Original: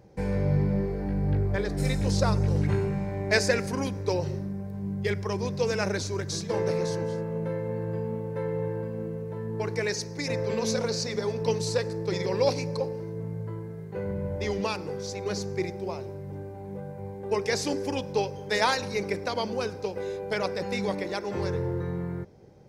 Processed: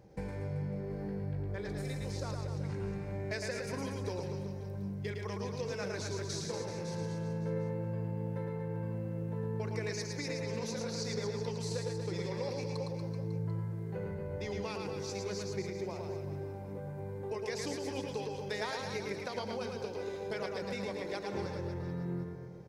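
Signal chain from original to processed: compressor, threshold -32 dBFS, peak gain reduction 14 dB; reverse bouncing-ball echo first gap 0.11 s, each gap 1.15×, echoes 5; gain -4 dB

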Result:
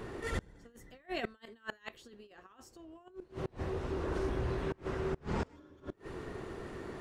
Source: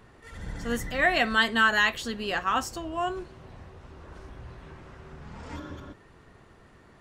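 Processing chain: bell 380 Hz +9.5 dB 0.89 oct; negative-ratio compressor -29 dBFS, ratio -0.5; flipped gate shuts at -26 dBFS, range -29 dB; gain +3 dB

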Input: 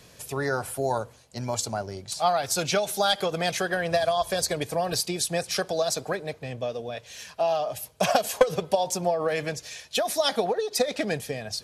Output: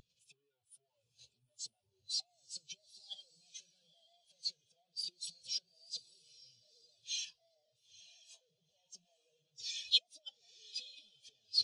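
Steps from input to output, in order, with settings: infinite clipping; band shelf 5200 Hz +12.5 dB 2.3 oct; gate -13 dBFS, range -39 dB; upward compressor, threshold -60 dBFS; high shelf 7000 Hz -8 dB; diffused feedback echo 0.91 s, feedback 43%, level -5.5 dB; spectral expander 2.5:1; gain +14.5 dB

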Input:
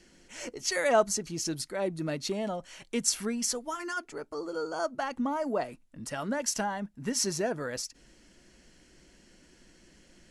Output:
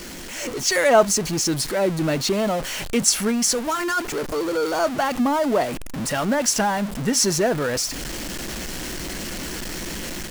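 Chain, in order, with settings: zero-crossing step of -33 dBFS; AGC gain up to 6 dB; gain +2 dB

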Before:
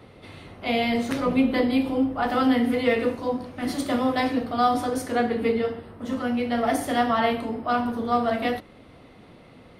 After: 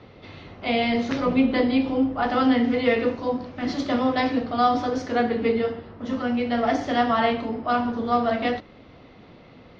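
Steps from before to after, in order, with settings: steep low-pass 6100 Hz 48 dB/oct; gain +1 dB

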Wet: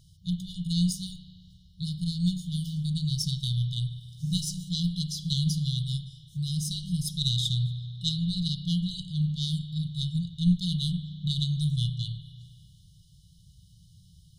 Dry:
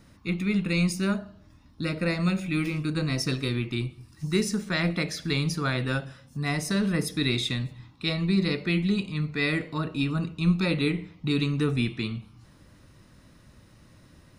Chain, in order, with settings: added harmonics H 2 -7 dB, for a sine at -11.5 dBFS; spring tank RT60 2.1 s, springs 33 ms, chirp 20 ms, DRR 9 dB; FFT band-reject 190–2900 Hz

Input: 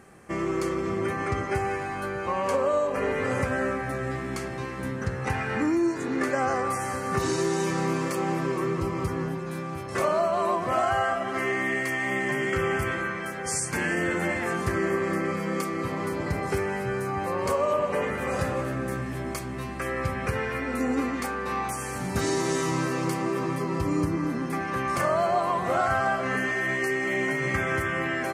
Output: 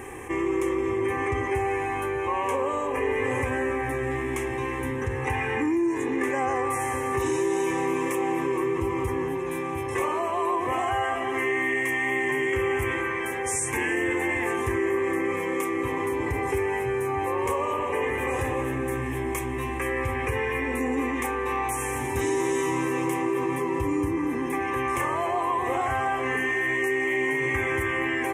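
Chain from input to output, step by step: fixed phaser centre 930 Hz, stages 8; fast leveller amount 50%

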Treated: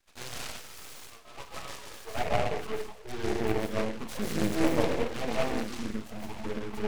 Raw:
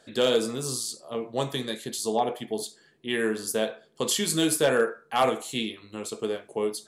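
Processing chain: LPF 3200 Hz 6 dB/oct; notch 2000 Hz, Q 5.9; in parallel at -9 dB: soft clip -23 dBFS, distortion -11 dB; on the sum: high-pass sweep 2300 Hz -> 190 Hz, 0.61–3.74; digital reverb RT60 1 s, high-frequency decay 0.65×, pre-delay 0.11 s, DRR -4.5 dB; half-wave rectifier; envelope flanger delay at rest 3.8 ms, full sweep at -16 dBFS; on a send: thin delay 0.62 s, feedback 72%, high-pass 2100 Hz, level -19 dB; on the sum: noise-modulated delay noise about 1400 Hz, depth 0.099 ms; gain -7 dB

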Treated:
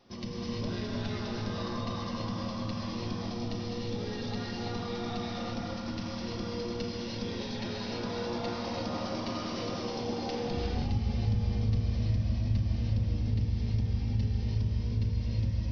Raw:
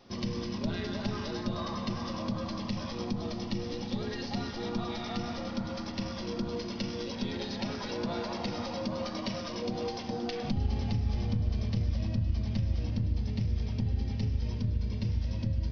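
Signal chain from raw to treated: 8.5–10.57 frequency-shifting echo 88 ms, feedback 53%, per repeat +72 Hz, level -7.5 dB; non-linear reverb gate 0.38 s rising, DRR -3 dB; gain -5 dB

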